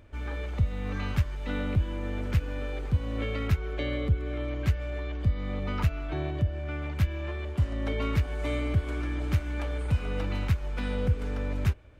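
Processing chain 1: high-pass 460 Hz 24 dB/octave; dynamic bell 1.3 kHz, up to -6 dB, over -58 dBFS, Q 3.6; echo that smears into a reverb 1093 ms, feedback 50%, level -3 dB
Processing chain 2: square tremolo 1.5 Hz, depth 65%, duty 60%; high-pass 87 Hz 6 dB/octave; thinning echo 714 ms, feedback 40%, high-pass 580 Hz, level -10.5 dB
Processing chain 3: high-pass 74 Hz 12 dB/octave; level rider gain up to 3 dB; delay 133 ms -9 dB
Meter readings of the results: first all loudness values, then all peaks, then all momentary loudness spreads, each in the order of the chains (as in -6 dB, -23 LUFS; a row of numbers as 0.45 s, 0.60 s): -38.5 LUFS, -35.0 LUFS, -29.0 LUFS; -23.0 dBFS, -16.0 dBFS, -12.5 dBFS; 4 LU, 7 LU, 4 LU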